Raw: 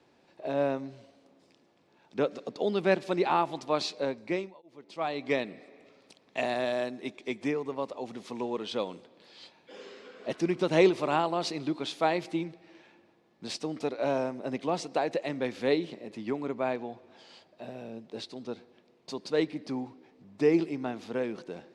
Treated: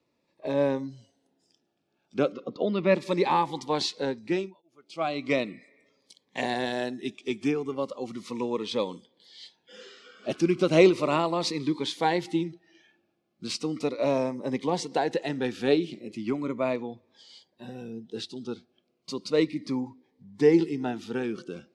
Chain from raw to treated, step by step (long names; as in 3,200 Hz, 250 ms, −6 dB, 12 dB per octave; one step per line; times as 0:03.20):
0:02.32–0:02.95: low-pass filter 3,100 Hz 12 dB per octave
noise reduction from a noise print of the clip's start 14 dB
phaser whose notches keep moving one way falling 0.36 Hz
level +5 dB